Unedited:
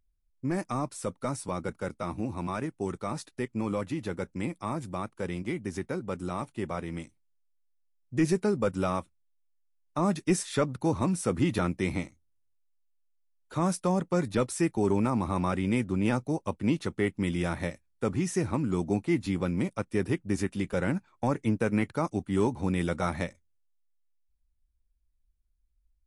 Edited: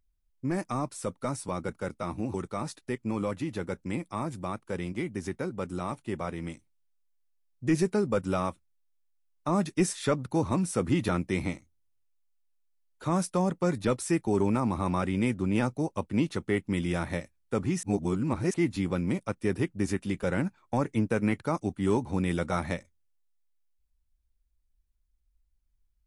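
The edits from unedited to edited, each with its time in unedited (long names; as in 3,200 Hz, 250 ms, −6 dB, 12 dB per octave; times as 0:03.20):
0:02.34–0:02.84: remove
0:18.33–0:19.04: reverse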